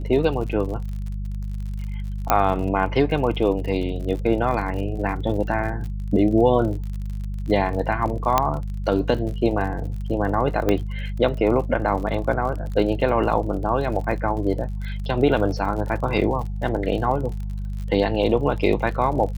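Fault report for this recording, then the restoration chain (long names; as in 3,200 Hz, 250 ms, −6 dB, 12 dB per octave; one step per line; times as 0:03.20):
surface crackle 49 per second −31 dBFS
mains hum 50 Hz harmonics 4 −28 dBFS
0:02.30: click −3 dBFS
0:08.38: click −3 dBFS
0:10.69: click −8 dBFS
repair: click removal
hum removal 50 Hz, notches 4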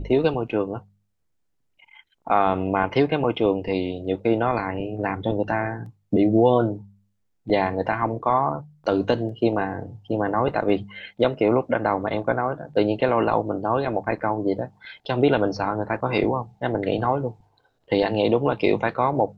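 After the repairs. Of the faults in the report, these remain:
0:10.69: click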